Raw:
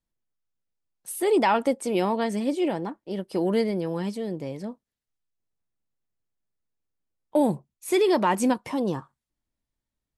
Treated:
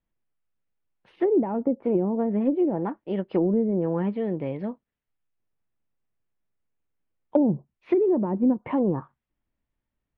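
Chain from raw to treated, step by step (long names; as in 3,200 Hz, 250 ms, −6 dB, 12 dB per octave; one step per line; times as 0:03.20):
treble cut that deepens with the level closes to 360 Hz, closed at −20 dBFS
inverse Chebyshev low-pass filter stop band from 7,100 Hz, stop band 50 dB
level +3.5 dB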